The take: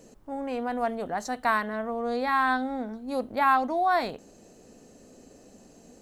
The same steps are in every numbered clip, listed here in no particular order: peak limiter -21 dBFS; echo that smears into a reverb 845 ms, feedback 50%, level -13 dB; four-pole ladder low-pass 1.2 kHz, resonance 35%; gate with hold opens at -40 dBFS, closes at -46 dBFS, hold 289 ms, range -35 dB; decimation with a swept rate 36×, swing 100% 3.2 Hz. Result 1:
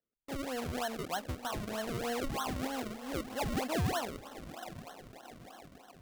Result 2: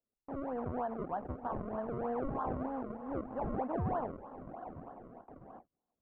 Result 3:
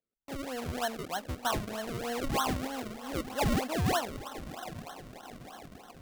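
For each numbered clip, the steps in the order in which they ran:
peak limiter > four-pole ladder low-pass > gate with hold > echo that smears into a reverb > decimation with a swept rate; peak limiter > echo that smears into a reverb > decimation with a swept rate > four-pole ladder low-pass > gate with hold; echo that smears into a reverb > gate with hold > four-pole ladder low-pass > decimation with a swept rate > peak limiter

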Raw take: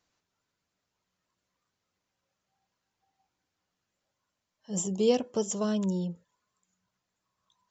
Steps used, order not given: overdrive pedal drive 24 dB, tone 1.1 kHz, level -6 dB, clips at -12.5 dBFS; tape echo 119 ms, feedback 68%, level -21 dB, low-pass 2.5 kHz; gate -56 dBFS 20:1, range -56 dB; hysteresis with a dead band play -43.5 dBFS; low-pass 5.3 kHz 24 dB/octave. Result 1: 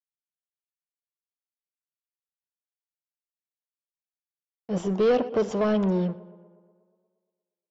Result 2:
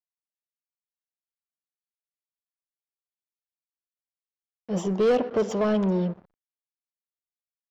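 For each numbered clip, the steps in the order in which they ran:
hysteresis with a dead band > gate > tape echo > overdrive pedal > low-pass; tape echo > hysteresis with a dead band > low-pass > overdrive pedal > gate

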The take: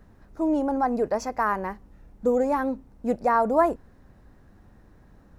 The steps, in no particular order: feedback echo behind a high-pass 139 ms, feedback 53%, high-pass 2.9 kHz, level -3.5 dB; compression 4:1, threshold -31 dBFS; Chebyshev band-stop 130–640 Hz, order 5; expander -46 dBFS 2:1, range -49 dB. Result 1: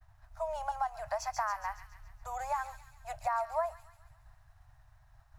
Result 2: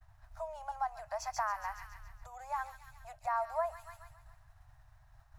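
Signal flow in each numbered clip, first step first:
Chebyshev band-stop > compression > expander > feedback echo behind a high-pass; feedback echo behind a high-pass > compression > Chebyshev band-stop > expander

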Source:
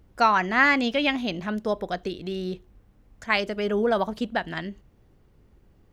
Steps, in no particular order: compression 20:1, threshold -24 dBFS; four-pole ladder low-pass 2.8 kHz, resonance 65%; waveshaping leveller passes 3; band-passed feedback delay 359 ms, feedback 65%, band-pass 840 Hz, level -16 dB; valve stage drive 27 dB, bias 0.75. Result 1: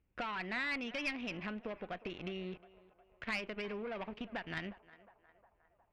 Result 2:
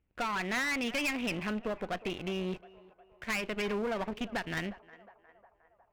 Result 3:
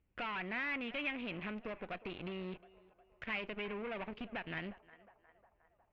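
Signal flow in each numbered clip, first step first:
waveshaping leveller > compression > four-pole ladder low-pass > valve stage > band-passed feedback delay; compression > four-pole ladder low-pass > waveshaping leveller > band-passed feedback delay > valve stage; waveshaping leveller > compression > band-passed feedback delay > valve stage > four-pole ladder low-pass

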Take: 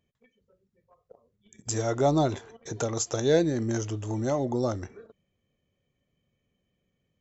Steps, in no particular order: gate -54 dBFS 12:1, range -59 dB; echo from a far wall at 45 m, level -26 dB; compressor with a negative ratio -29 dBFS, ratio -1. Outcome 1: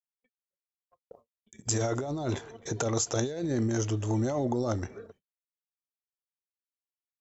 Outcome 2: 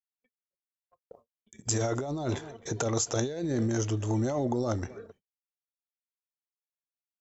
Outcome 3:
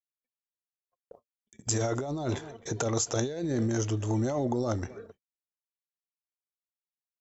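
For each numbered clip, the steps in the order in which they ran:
compressor with a negative ratio > echo from a far wall > gate; echo from a far wall > compressor with a negative ratio > gate; echo from a far wall > gate > compressor with a negative ratio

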